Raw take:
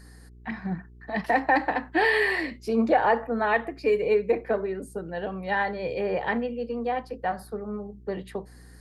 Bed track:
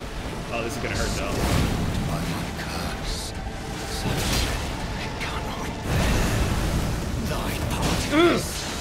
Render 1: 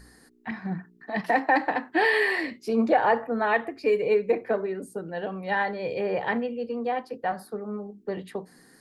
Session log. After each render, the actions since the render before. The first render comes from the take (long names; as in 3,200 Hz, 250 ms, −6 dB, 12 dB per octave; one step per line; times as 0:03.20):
hum removal 60 Hz, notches 3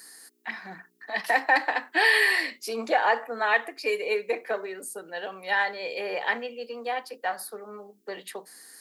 high-pass filter 280 Hz 12 dB per octave
spectral tilt +4 dB per octave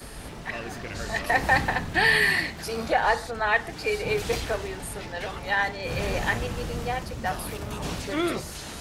mix in bed track −8.5 dB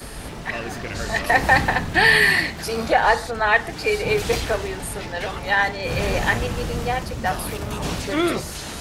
level +5.5 dB
brickwall limiter −3 dBFS, peak gain reduction 1 dB